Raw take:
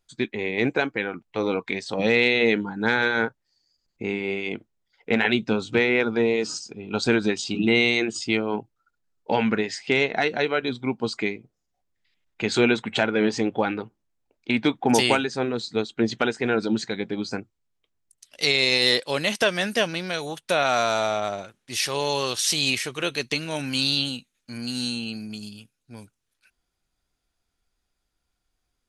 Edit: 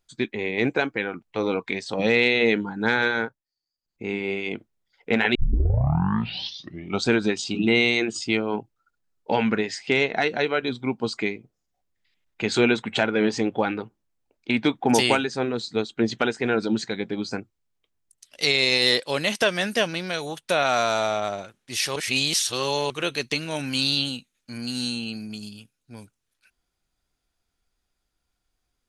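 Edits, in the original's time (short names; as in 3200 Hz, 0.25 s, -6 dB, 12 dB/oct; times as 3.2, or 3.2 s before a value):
3.1–4.15 dip -17 dB, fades 0.33 s
5.35 tape start 1.71 s
21.96–22.9 reverse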